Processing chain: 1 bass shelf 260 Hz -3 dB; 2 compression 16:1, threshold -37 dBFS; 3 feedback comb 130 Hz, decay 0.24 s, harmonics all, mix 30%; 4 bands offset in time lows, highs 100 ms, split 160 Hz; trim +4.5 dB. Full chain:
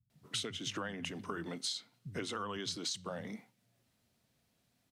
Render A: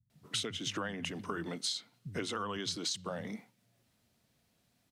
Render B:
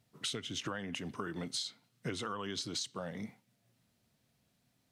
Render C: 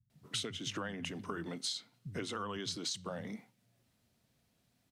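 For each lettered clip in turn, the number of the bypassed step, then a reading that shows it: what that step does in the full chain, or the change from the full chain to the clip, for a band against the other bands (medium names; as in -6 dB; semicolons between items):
3, loudness change +2.5 LU; 4, echo-to-direct 25.0 dB to none; 1, 125 Hz band +1.5 dB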